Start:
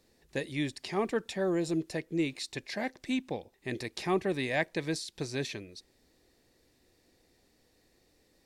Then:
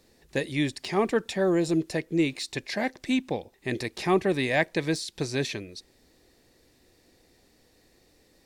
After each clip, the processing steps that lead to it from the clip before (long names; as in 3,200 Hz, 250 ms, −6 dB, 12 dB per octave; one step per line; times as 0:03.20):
de-essing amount 85%
level +6 dB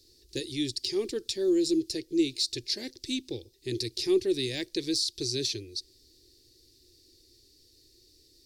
drawn EQ curve 120 Hz 0 dB, 170 Hz −21 dB, 360 Hz +2 dB, 690 Hz −25 dB, 1,300 Hz −22 dB, 2,100 Hz −14 dB, 4,700 Hz +10 dB, 7,200 Hz +2 dB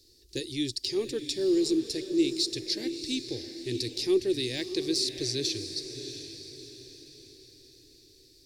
feedback delay with all-pass diffusion 673 ms, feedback 43%, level −9.5 dB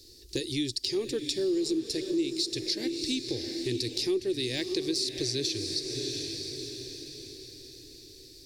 downward compressor 3 to 1, threshold −37 dBFS, peak gain reduction 13 dB
level +7.5 dB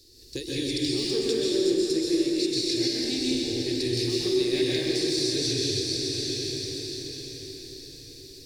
dense smooth reverb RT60 2.7 s, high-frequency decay 0.75×, pre-delay 115 ms, DRR −6.5 dB
level −2.5 dB